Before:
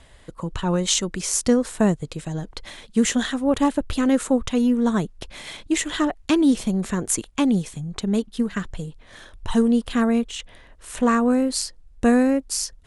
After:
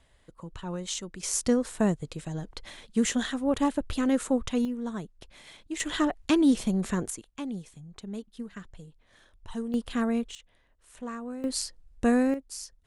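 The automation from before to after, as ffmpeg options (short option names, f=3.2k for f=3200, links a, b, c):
-af "asetnsamples=n=441:p=0,asendcmd='1.23 volume volume -6dB;4.65 volume volume -13.5dB;5.8 volume volume -4dB;7.1 volume volume -15.5dB;9.74 volume volume -7.5dB;10.35 volume volume -18.5dB;11.44 volume volume -6dB;12.34 volume volume -14dB',volume=-13dB"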